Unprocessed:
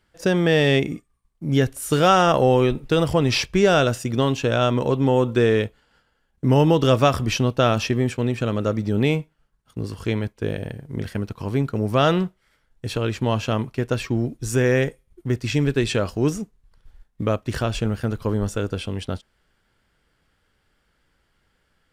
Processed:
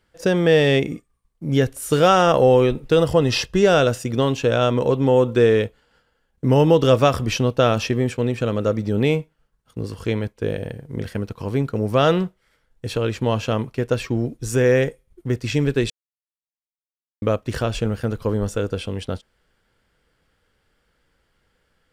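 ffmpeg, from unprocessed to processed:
-filter_complex "[0:a]asettb=1/sr,asplit=3[a][b][c];[a]atrim=end=2.984[d];[b]atrim=start=2.98:end=3.63,asetpts=PTS-STARTPTS,afade=t=in:d=0.004:c=qsin,afade=t=out:st=0.646:d=0.004:c=qsin,asuperstop=centerf=2300:order=12:qfactor=7.9[e];[c]atrim=start=3.626[f];[d][e]acrossfade=d=0.004:c1=hsin:c2=qsin[g];[g][f]acrossfade=d=0.004:c1=qsin:c2=hsin,asplit=3[h][i][j];[h]atrim=end=15.9,asetpts=PTS-STARTPTS,afade=t=out:st=15.896:d=0.004:c=hsin[k];[i]atrim=start=15.9:end=17.22,asetpts=PTS-STARTPTS,volume=0[l];[j]atrim=start=17.22,asetpts=PTS-STARTPTS,afade=t=in:d=0.004:c=hsin[m];[k][l][m]concat=n=3:v=0:a=1,equalizer=f=490:t=o:w=0.32:g=5.5"

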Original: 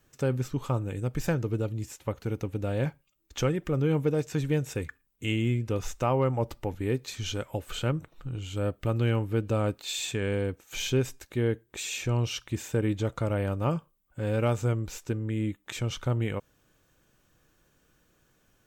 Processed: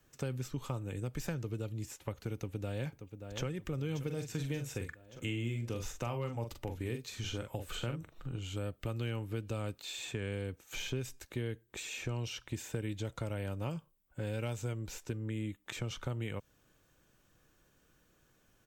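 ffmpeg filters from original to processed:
-filter_complex "[0:a]asplit=2[a][b];[b]afade=t=in:st=2.34:d=0.01,afade=t=out:st=3.45:d=0.01,aecho=0:1:580|1160|1740|2320|2900|3480:0.211349|0.126809|0.0760856|0.0456514|0.0273908|0.0164345[c];[a][c]amix=inputs=2:normalize=0,asettb=1/sr,asplit=3[d][e][f];[d]atrim=end=4.014[g];[e]atrim=start=4.01:end=8.36,asetpts=PTS-STARTPTS,afade=t=in:d=0.004:c=qsin,afade=t=out:st=4.346:d=0.004:c=qsin,asplit=2[h][i];[i]adelay=43,volume=-7dB[j];[h][j]amix=inputs=2:normalize=0,atrim=end_sample=191835[k];[f]atrim=start=8.356[l];[g][k]acrossfade=d=0.004:c1=hsin:c2=qsin[m];[m][l]acrossfade=d=0.004:c1=qsin:c2=hsin,asettb=1/sr,asplit=3[n][o][p];[n]atrim=end=12.164[q];[o]atrim=start=12.16:end=15.13,asetpts=PTS-STARTPTS,afade=t=in:d=0.004:c=qsin,afade=t=out:st=2.966:d=0.004:c=qsin,bandreject=f=1.2k:w=12[r];[p]atrim=start=15.126[s];[q][r]acrossfade=d=0.004:c1=hsin:c2=qsin[t];[t][s]acrossfade=d=0.004:c1=qsin:c2=hsin,acrossover=split=170|2300[u][v][w];[u]acompressor=threshold=-37dB:ratio=4[x];[v]acompressor=threshold=-37dB:ratio=4[y];[w]acompressor=threshold=-42dB:ratio=4[z];[x][y][z]amix=inputs=3:normalize=0,volume=-2.5dB"

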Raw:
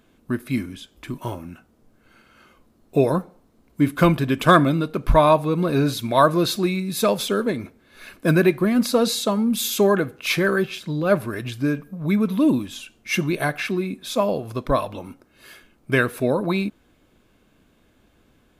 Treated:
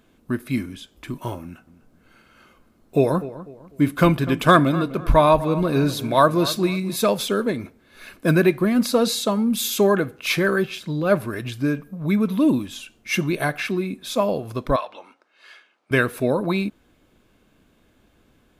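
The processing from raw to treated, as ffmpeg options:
-filter_complex "[0:a]asettb=1/sr,asplit=3[a][b][c];[a]atrim=end=1.424[d];[b]atrim=start=1.42:end=6.96,asetpts=PTS-STARTPTS,afade=t=in:d=0.004:c=qsin,afade=t=out:st=5.536:d=0.004:c=qsin,asplit=2[e][f];[f]adelay=249,lowpass=f=1.9k:p=1,volume=-15dB,asplit=2[g][h];[h]adelay=249,lowpass=f=1.9k:p=1,volume=0.35,asplit=2[i][j];[j]adelay=249,lowpass=f=1.9k:p=1,volume=0.35[k];[e][g][i][k]amix=inputs=4:normalize=0,atrim=end_sample=244314[l];[c]atrim=start=6.956[m];[d][l]acrossfade=d=0.004:c1=hsin:c2=qsin[n];[n][m]acrossfade=d=0.004:c1=qsin:c2=hsin,asettb=1/sr,asplit=3[o][p][q];[o]atrim=end=14.764[r];[p]atrim=start=14.76:end=15.91,asetpts=PTS-STARTPTS,afade=t=in:d=0.004:c=qsin,afade=t=out:st=1.146:d=0.004:c=qsin,highpass=720,lowpass=4.7k[s];[q]atrim=start=15.906[t];[r][s]acrossfade=d=0.004:c1=hsin:c2=qsin[u];[u][t]acrossfade=d=0.004:c1=qsin:c2=hsin"

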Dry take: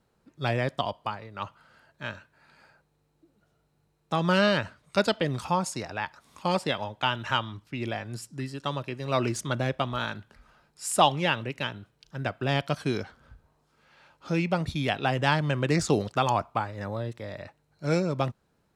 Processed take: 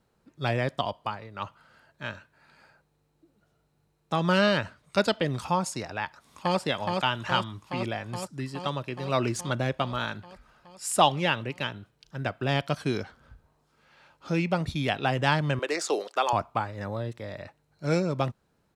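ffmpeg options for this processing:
-filter_complex "[0:a]asplit=2[a][b];[b]afade=t=in:st=6.03:d=0.01,afade=t=out:st=6.59:d=0.01,aecho=0:1:420|840|1260|1680|2100|2520|2940|3360|3780|4200|4620|5040:0.668344|0.501258|0.375943|0.281958|0.211468|0.158601|0.118951|0.0892131|0.0669099|0.0501824|0.0376368|0.0282276[c];[a][c]amix=inputs=2:normalize=0,asettb=1/sr,asplit=3[d][e][f];[d]atrim=end=15.594[g];[e]atrim=start=15.59:end=16.33,asetpts=PTS-STARTPTS,afade=t=in:d=0.004:c=qsin,afade=t=out:st=0.736:d=0.004:c=qsin,highpass=f=380:w=0.5412,highpass=f=380:w=1.3066[h];[f]atrim=start=16.326[i];[g][h]acrossfade=d=0.004:c1=hsin:c2=qsin[j];[j][i]acrossfade=d=0.004:c1=qsin:c2=hsin"

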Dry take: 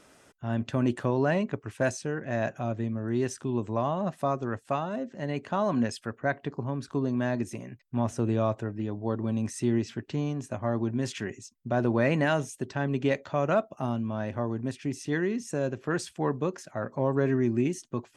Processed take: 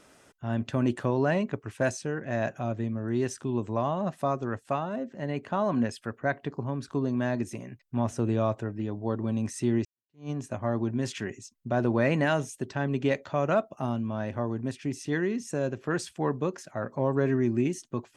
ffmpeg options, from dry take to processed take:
-filter_complex "[0:a]asettb=1/sr,asplit=3[a][b][c];[a]atrim=end=4.734[d];[b]atrim=start=4.73:end=6.04,asetpts=PTS-STARTPTS,afade=t=in:d=0.004:c=qsin,afade=t=out:st=1.306:d=0.004:c=qsin,equalizer=f=6k:w=0.68:g=-4.5[e];[c]atrim=start=6.036[f];[d][e]acrossfade=d=0.004:c1=hsin:c2=qsin[g];[g][f]acrossfade=d=0.004:c1=qsin:c2=hsin,asplit=2[h][i];[h]atrim=end=9.85,asetpts=PTS-STARTPTS,afade=t=out:st=9.846:d=0.004:c=hsin[j];[i]atrim=start=9.85,asetpts=PTS-STARTPTS,afade=t=in:d=0.45:c=exp[k];[j][k]concat=n=2:v=0:a=1"

